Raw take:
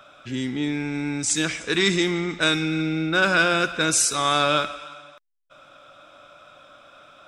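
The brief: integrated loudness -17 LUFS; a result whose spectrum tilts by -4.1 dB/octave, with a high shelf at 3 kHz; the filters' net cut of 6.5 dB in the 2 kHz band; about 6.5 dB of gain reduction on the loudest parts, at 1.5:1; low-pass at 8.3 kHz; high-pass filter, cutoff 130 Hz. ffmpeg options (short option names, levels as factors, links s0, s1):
-af "highpass=130,lowpass=8300,equalizer=f=2000:t=o:g=-7.5,highshelf=f=3000:g=-7,acompressor=threshold=0.0141:ratio=1.5,volume=5.31"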